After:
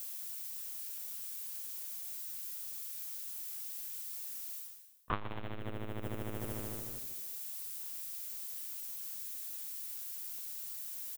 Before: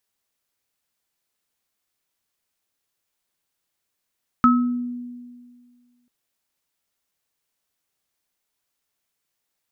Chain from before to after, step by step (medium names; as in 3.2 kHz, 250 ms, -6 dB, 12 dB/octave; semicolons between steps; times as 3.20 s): cycle switcher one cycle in 2, inverted; dynamic bell 440 Hz, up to -6 dB, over -31 dBFS, Q 0.7; tape speed -13%; LPC vocoder at 8 kHz pitch kept; tremolo saw up 2.5 Hz, depth 40%; on a send: frequency-shifting echo 113 ms, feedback 55%, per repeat -120 Hz, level -13 dB; on the sum: added noise violet -61 dBFS; reverse; compression 6:1, threshold -47 dBFS, peak gain reduction 30.5 dB; reverse; transformer saturation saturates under 180 Hz; trim +18 dB